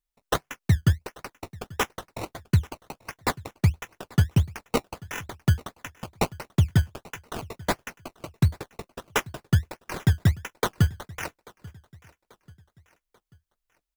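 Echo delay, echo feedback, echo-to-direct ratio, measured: 838 ms, 45%, −22.0 dB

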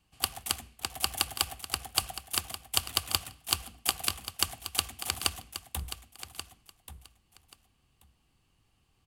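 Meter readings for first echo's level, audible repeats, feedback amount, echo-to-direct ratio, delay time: −11.5 dB, 2, 17%, −11.5 dB, 1,133 ms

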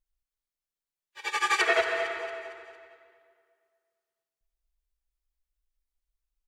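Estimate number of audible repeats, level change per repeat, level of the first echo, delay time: 4, −6.0 dB, −13.5 dB, 228 ms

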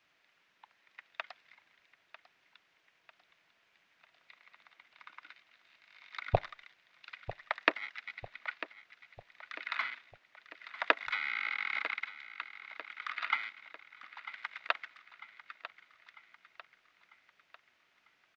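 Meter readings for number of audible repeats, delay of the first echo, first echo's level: 4, 947 ms, −14.0 dB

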